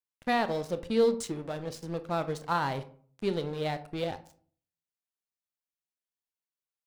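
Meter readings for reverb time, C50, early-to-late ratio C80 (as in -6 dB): 0.50 s, 15.5 dB, 19.5 dB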